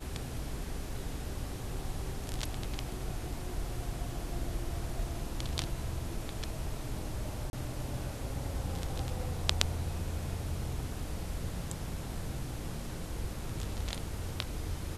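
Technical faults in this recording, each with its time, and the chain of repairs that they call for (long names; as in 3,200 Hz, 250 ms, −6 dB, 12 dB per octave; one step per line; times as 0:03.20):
0:07.50–0:07.53: drop-out 31 ms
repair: repair the gap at 0:07.50, 31 ms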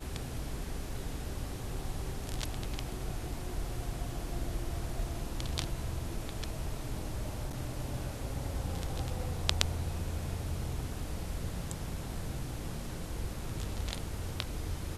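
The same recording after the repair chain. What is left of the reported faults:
none of them is left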